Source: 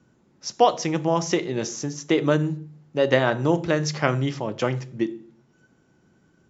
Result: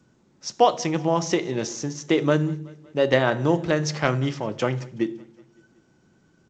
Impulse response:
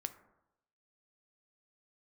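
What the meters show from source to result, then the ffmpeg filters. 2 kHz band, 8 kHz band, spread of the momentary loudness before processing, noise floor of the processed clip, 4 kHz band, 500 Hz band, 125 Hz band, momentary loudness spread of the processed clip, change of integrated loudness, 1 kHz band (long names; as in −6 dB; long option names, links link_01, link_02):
0.0 dB, can't be measured, 11 LU, −62 dBFS, 0.0 dB, 0.0 dB, 0.0 dB, 11 LU, 0.0 dB, 0.0 dB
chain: -af "aecho=1:1:187|374|561|748:0.0668|0.0374|0.021|0.0117" -ar 16000 -c:a g722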